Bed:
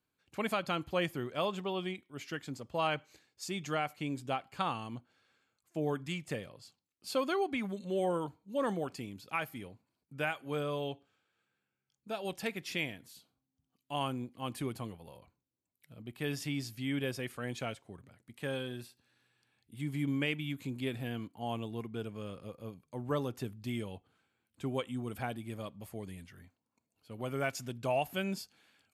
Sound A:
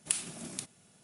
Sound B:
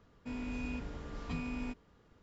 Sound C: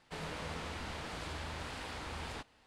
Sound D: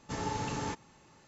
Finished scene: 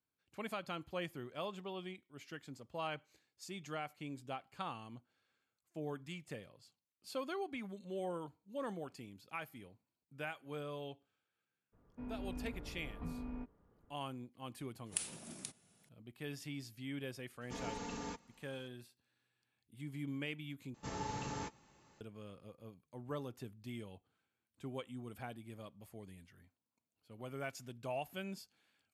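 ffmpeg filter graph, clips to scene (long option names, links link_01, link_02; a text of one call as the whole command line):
ffmpeg -i bed.wav -i cue0.wav -i cue1.wav -i cue2.wav -i cue3.wav -filter_complex "[4:a]asplit=2[link_01][link_02];[0:a]volume=-9dB[link_03];[2:a]lowpass=1200[link_04];[link_01]aecho=1:1:4.2:0.83[link_05];[link_02]asplit=2[link_06][link_07];[link_07]adelay=15,volume=-12dB[link_08];[link_06][link_08]amix=inputs=2:normalize=0[link_09];[link_03]asplit=2[link_10][link_11];[link_10]atrim=end=20.744[link_12];[link_09]atrim=end=1.27,asetpts=PTS-STARTPTS,volume=-7dB[link_13];[link_11]atrim=start=22.006[link_14];[link_04]atrim=end=2.22,asetpts=PTS-STARTPTS,volume=-5dB,afade=type=in:duration=0.02,afade=type=out:start_time=2.2:duration=0.02,adelay=11720[link_15];[1:a]atrim=end=1.03,asetpts=PTS-STARTPTS,volume=-7.5dB,afade=type=in:duration=0.004:curve=hsin,afade=type=out:start_time=1.026:duration=0.004:curve=hsin,adelay=14860[link_16];[link_05]atrim=end=1.27,asetpts=PTS-STARTPTS,volume=-10dB,afade=type=in:duration=0.004:curve=hsin,afade=type=out:start_time=1.266:duration=0.004:curve=hsin,adelay=17410[link_17];[link_12][link_13]acrossfade=duration=0.004:curve1=hsin:curve2=hsin[link_18];[link_18][link_14]acrossfade=duration=0.004:curve1=hsin:curve2=hsin[link_19];[link_19][link_15][link_16][link_17]amix=inputs=4:normalize=0" out.wav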